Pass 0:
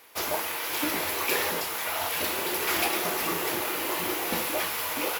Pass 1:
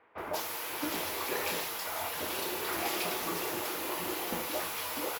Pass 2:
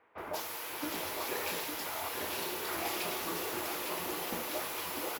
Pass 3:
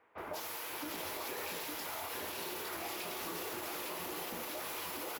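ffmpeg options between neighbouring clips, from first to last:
-filter_complex "[0:a]acrossover=split=2100[a][b];[b]adelay=180[c];[a][c]amix=inputs=2:normalize=0,acrossover=split=6800[d][e];[e]asoftclip=type=hard:threshold=-32.5dB[f];[d][f]amix=inputs=2:normalize=0,volume=-5dB"
-af "aecho=1:1:858:0.501,volume=-3dB"
-af "alimiter=level_in=6dB:limit=-24dB:level=0:latency=1,volume=-6dB,volume=-1.5dB"

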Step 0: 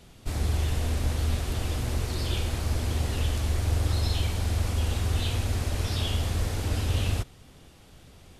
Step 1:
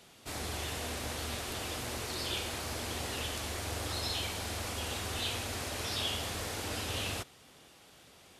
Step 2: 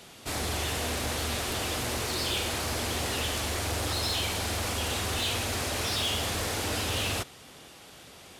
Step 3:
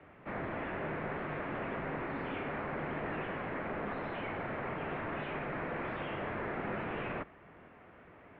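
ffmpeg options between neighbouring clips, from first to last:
-af "highpass=f=540:p=1"
-af "aeval=exprs='0.0841*(cos(1*acos(clip(val(0)/0.0841,-1,1)))-cos(1*PI/2))+0.0266*(cos(5*acos(clip(val(0)/0.0841,-1,1)))-cos(5*PI/2))':c=same"
-af "highpass=f=160:t=q:w=0.5412,highpass=f=160:t=q:w=1.307,lowpass=f=2.2k:t=q:w=0.5176,lowpass=f=2.2k:t=q:w=0.7071,lowpass=f=2.2k:t=q:w=1.932,afreqshift=-90,volume=-3dB"

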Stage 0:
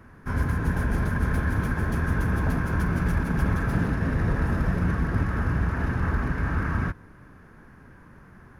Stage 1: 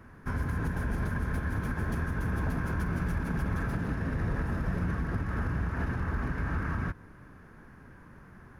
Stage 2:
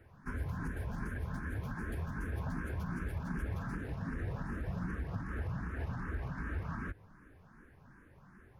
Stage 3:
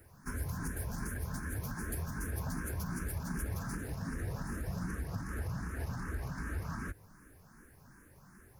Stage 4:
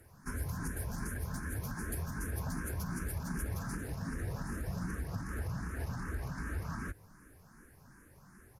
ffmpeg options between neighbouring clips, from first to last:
-af "alimiter=limit=-20dB:level=0:latency=1:release=200,volume=-2dB"
-filter_complex "[0:a]asplit=2[a][b];[b]afreqshift=2.6[c];[a][c]amix=inputs=2:normalize=1,volume=-4.5dB"
-af "aexciter=amount=5.2:drive=6.8:freq=4.7k"
-af "aresample=32000,aresample=44100"

